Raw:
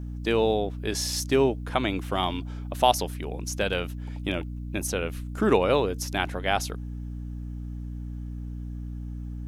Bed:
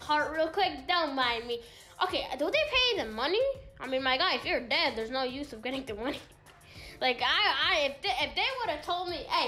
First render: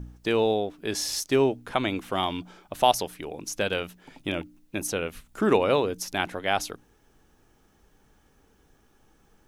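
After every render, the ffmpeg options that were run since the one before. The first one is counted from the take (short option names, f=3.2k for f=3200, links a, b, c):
-af "bandreject=f=60:t=h:w=4,bandreject=f=120:t=h:w=4,bandreject=f=180:t=h:w=4,bandreject=f=240:t=h:w=4,bandreject=f=300:t=h:w=4"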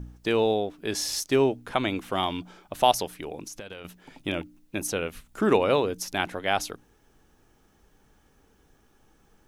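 -filter_complex "[0:a]asettb=1/sr,asplit=3[a][b][c];[a]atrim=end=3.454[d];[b]atrim=start=3.45:end=3.85,asetpts=PTS-STARTPTS,afade=t=in:d=0.004:c=qsin,afade=t=out:st=0.396:d=0.004:c=qsin,acompressor=threshold=-36dB:ratio=8:attack=3.2:release=140:knee=1:detection=peak[e];[c]atrim=start=3.846[f];[d][e]acrossfade=d=0.004:c1=hsin:c2=qsin[g];[g][f]acrossfade=d=0.004:c1=qsin:c2=hsin"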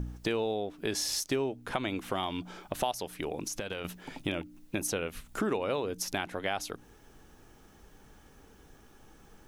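-filter_complex "[0:a]asplit=2[a][b];[b]alimiter=limit=-15.5dB:level=0:latency=1:release=290,volume=-1.5dB[c];[a][c]amix=inputs=2:normalize=0,acompressor=threshold=-32dB:ratio=3"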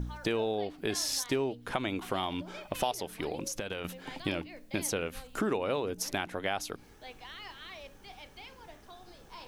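-filter_complex "[1:a]volume=-20dB[a];[0:a][a]amix=inputs=2:normalize=0"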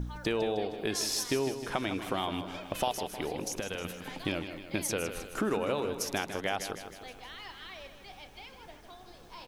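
-af "aecho=1:1:156|312|468|624|780|936:0.316|0.177|0.0992|0.0555|0.0311|0.0174"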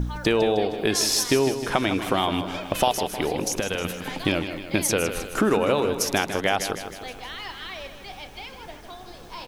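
-af "volume=9.5dB"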